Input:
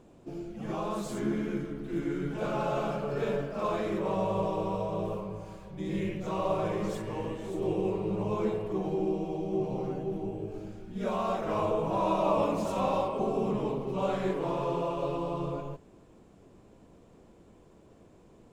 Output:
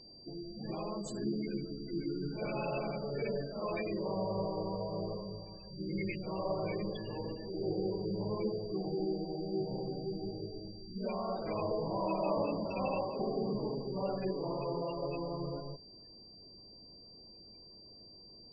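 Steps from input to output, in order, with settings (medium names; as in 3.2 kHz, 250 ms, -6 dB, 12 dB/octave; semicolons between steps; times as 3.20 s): spectral gate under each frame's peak -20 dB strong; resonant high shelf 1.7 kHz +8.5 dB, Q 3; whistle 4.7 kHz -49 dBFS; trim -4.5 dB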